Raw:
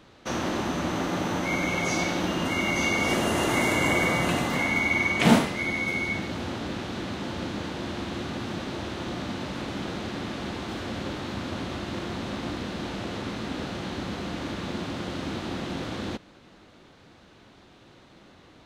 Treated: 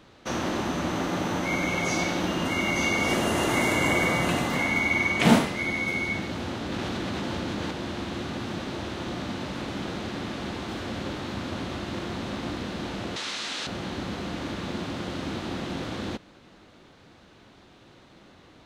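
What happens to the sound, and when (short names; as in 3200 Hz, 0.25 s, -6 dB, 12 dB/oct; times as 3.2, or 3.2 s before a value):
6.72–7.71 fast leveller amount 100%
13.16–13.67 weighting filter ITU-R 468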